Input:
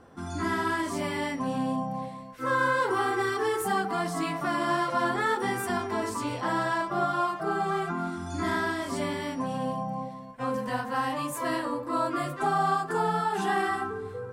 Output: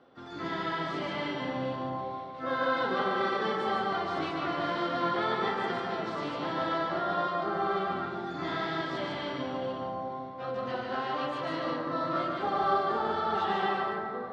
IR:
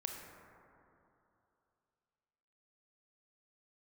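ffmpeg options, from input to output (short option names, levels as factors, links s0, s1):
-filter_complex "[0:a]highpass=420,equalizer=f=430:t=q:w=4:g=-4,equalizer=f=690:t=q:w=4:g=-5,equalizer=f=980:t=q:w=4:g=-9,equalizer=f=1700:t=q:w=4:g=-10,equalizer=f=2500:t=q:w=4:g=-5,equalizer=f=3700:t=q:w=4:g=4,lowpass=f=3800:w=0.5412,lowpass=f=3800:w=1.3066,asplit=3[s0][s1][s2];[s1]asetrate=22050,aresample=44100,atempo=2,volume=0.447[s3];[s2]asetrate=58866,aresample=44100,atempo=0.749154,volume=0.178[s4];[s0][s3][s4]amix=inputs=3:normalize=0,asplit=2[s5][s6];[1:a]atrim=start_sample=2205,adelay=147[s7];[s6][s7]afir=irnorm=-1:irlink=0,volume=1.06[s8];[s5][s8]amix=inputs=2:normalize=0"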